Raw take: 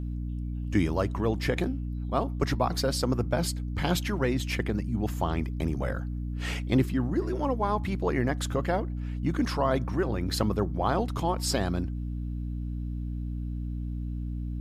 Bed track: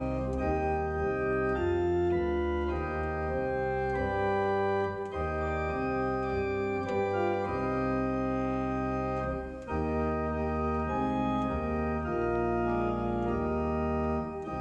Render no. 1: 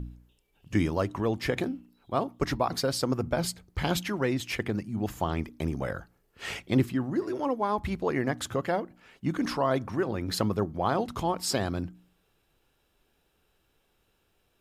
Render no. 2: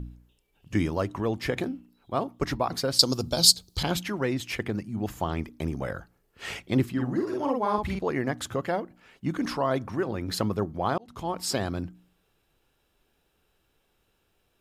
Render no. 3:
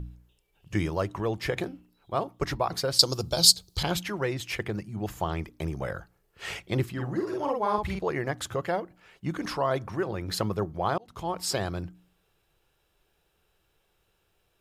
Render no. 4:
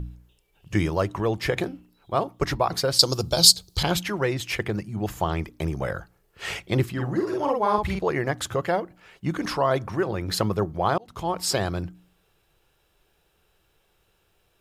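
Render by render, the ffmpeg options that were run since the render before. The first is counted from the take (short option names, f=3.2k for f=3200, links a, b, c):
-af "bandreject=f=60:t=h:w=4,bandreject=f=120:t=h:w=4,bandreject=f=180:t=h:w=4,bandreject=f=240:t=h:w=4,bandreject=f=300:t=h:w=4"
-filter_complex "[0:a]asettb=1/sr,asplit=3[a][b][c];[a]atrim=end=2.994[d];[b]atrim=start=2.99:end=3.83,asetpts=PTS-STARTPTS,afade=t=in:d=0.004:c=qsin,afade=t=out:st=0.836:d=0.004:c=qsin,highshelf=f=2.9k:t=q:w=3:g=13[e];[c]atrim=start=3.826[f];[d][e]acrossfade=d=0.004:c1=hsin:c2=qsin[g];[g][f]acrossfade=d=0.004:c1=qsin:c2=hsin,asettb=1/sr,asplit=3[h][i][j];[h]atrim=end=6.924[k];[i]atrim=start=6.92:end=7.99,asetpts=PTS-STARTPTS,afade=t=in:d=0.004:c=qsin,afade=t=out:st=1.066:d=0.004:c=qsin,asplit=2[l][m];[m]adelay=48,volume=-2.5dB[n];[l][n]amix=inputs=2:normalize=0,atrim=end_sample=47187[o];[j]atrim=start=7.986[p];[k][o]acrossfade=d=0.004:c1=hsin:c2=qsin[q];[q][p]acrossfade=d=0.004:c1=qsin:c2=hsin,asplit=2[r][s];[r]atrim=end=10.98,asetpts=PTS-STARTPTS,afade=t=out:st=10.976:d=0.004:c=hsin[t];[s]atrim=start=10.98,asetpts=PTS-STARTPTS,afade=t=in:d=0.42[u];[t][u]concat=n=2:v=0:a=1"
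-af "equalizer=f=250:w=5.1:g=-13.5"
-af "volume=4.5dB,alimiter=limit=-1dB:level=0:latency=1"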